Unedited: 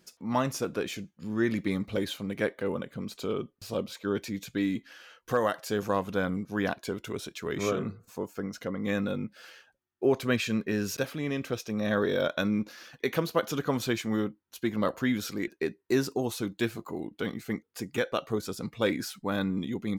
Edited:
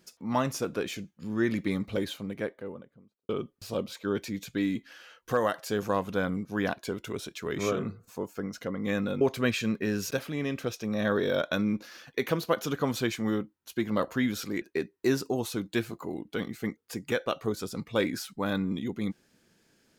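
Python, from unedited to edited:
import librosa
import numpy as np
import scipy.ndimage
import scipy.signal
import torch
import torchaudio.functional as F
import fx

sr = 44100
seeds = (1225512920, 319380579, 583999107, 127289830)

y = fx.studio_fade_out(x, sr, start_s=1.86, length_s=1.43)
y = fx.edit(y, sr, fx.cut(start_s=9.21, length_s=0.86), tone=tone)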